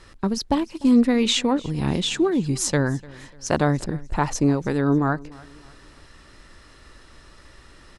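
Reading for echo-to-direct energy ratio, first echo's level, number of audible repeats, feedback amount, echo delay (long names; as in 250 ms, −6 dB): −22.0 dB, −22.5 dB, 2, 40%, 297 ms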